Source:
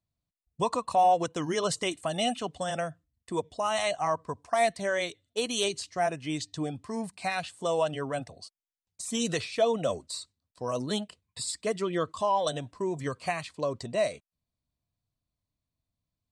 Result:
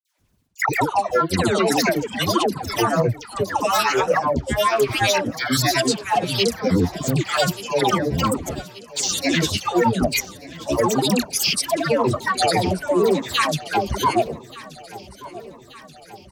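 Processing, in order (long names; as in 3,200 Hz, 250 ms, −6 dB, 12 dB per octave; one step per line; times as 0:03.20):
reversed playback
downward compressor 12 to 1, threshold −37 dBFS, peak gain reduction 18.5 dB
reversed playback
granular cloud, pitch spread up and down by 12 semitones
all-pass dispersion lows, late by 146 ms, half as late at 930 Hz
harmonic generator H 7 −36 dB, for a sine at −28.5 dBFS
on a send: repeating echo 1,180 ms, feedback 59%, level −19.5 dB
on the sum: boost into a limiter +31.5 dB
level −7.5 dB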